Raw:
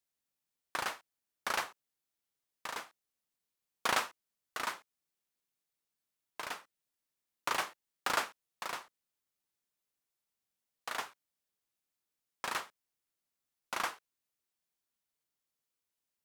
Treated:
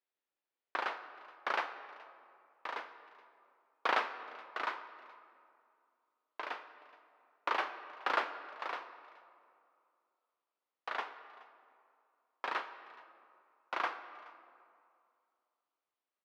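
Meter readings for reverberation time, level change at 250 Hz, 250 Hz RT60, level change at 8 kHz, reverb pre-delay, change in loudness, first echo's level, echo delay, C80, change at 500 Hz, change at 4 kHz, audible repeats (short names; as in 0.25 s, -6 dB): 2.4 s, -1.5 dB, 2.5 s, under -15 dB, 13 ms, -0.5 dB, -23.0 dB, 0.424 s, 11.5 dB, +2.0 dB, -5.0 dB, 1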